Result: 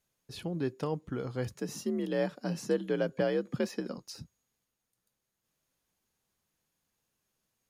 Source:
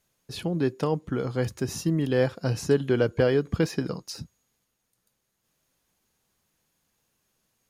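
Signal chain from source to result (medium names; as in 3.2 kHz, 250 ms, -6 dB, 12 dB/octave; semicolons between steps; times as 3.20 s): 1.54–3.98 s: frequency shift +54 Hz; trim -7.5 dB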